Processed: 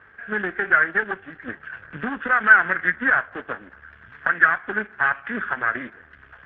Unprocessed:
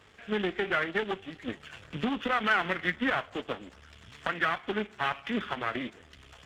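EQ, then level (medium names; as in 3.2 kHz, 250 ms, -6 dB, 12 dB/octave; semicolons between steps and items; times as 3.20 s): resonant low-pass 1.6 kHz, resonance Q 7.3; 0.0 dB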